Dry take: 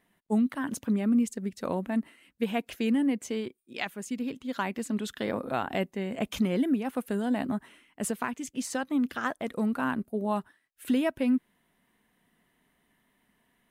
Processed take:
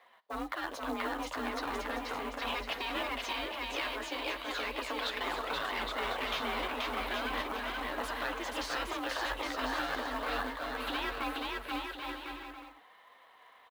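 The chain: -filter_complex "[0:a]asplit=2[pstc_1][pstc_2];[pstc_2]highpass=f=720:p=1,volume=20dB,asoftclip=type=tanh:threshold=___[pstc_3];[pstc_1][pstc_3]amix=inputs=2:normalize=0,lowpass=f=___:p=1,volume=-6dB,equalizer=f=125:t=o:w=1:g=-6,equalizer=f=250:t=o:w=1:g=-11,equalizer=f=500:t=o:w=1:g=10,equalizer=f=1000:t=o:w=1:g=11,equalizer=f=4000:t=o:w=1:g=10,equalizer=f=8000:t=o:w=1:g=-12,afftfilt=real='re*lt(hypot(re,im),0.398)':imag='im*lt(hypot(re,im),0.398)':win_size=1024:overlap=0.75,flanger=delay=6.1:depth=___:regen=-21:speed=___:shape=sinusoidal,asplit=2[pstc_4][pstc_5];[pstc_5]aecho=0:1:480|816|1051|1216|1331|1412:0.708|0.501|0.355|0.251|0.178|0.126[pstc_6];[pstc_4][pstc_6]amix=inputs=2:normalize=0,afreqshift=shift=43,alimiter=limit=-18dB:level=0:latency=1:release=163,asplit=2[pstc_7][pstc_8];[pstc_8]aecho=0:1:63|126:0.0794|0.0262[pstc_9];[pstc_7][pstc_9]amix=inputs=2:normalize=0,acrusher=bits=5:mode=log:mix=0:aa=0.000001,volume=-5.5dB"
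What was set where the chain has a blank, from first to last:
-16dB, 3400, 9.5, 0.38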